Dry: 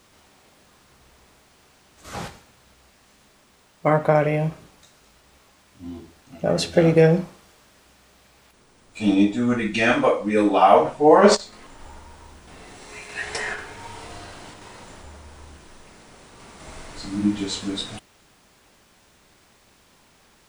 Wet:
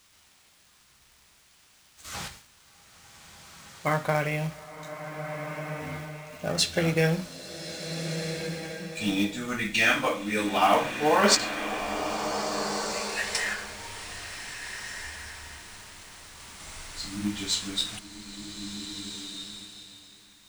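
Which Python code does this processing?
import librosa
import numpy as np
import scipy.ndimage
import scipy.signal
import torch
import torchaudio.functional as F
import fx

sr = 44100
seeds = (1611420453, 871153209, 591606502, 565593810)

p1 = fx.tone_stack(x, sr, knobs='5-5-5')
p2 = fx.hum_notches(p1, sr, base_hz=60, count=4)
p3 = fx.quant_companded(p2, sr, bits=4)
p4 = p2 + (p3 * librosa.db_to_amplitude(-5.5))
p5 = fx.rev_bloom(p4, sr, seeds[0], attack_ms=1630, drr_db=6.0)
y = p5 * librosa.db_to_amplitude(5.5)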